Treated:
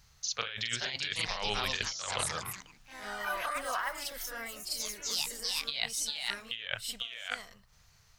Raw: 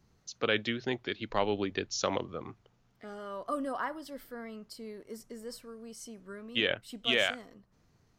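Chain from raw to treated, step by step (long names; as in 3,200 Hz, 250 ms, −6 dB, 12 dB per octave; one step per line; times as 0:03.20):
guitar amp tone stack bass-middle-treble 10-0-10
backwards echo 44 ms −5.5 dB
delay with pitch and tempo change per echo 506 ms, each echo +4 semitones, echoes 3, each echo −6 dB
compressor whose output falls as the input rises −44 dBFS, ratio −1
level +8.5 dB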